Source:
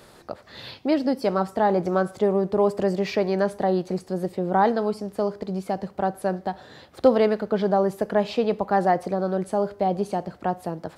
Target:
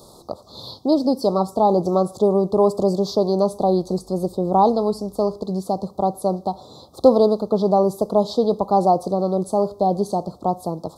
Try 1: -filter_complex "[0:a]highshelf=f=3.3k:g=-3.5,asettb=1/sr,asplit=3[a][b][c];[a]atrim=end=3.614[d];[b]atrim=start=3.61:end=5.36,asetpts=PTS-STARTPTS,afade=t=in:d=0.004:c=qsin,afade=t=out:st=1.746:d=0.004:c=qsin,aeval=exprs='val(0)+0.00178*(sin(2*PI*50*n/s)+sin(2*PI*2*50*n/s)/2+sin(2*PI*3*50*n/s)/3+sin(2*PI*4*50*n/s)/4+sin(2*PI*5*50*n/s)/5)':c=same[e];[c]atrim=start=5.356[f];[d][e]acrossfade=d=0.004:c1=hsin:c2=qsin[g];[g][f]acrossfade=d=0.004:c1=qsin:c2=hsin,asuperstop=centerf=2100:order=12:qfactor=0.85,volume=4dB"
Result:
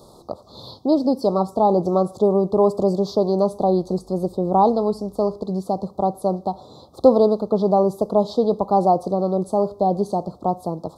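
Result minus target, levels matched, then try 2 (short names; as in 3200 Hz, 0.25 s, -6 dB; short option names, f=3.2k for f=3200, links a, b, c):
8000 Hz band -6.0 dB
-filter_complex "[0:a]highshelf=f=3.3k:g=3.5,asettb=1/sr,asplit=3[a][b][c];[a]atrim=end=3.614[d];[b]atrim=start=3.61:end=5.36,asetpts=PTS-STARTPTS,afade=t=in:d=0.004:c=qsin,afade=t=out:st=1.746:d=0.004:c=qsin,aeval=exprs='val(0)+0.00178*(sin(2*PI*50*n/s)+sin(2*PI*2*50*n/s)/2+sin(2*PI*3*50*n/s)/3+sin(2*PI*4*50*n/s)/4+sin(2*PI*5*50*n/s)/5)':c=same[e];[c]atrim=start=5.356[f];[d][e]acrossfade=d=0.004:c1=hsin:c2=qsin[g];[g][f]acrossfade=d=0.004:c1=qsin:c2=hsin,asuperstop=centerf=2100:order=12:qfactor=0.85,volume=4dB"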